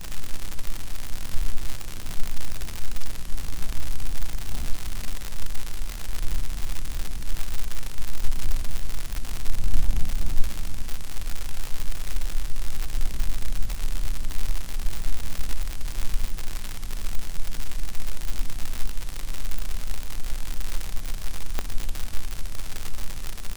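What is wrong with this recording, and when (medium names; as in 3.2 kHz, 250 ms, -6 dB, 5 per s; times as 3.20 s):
crackle 150 per s -21 dBFS
21.59 s: pop -10 dBFS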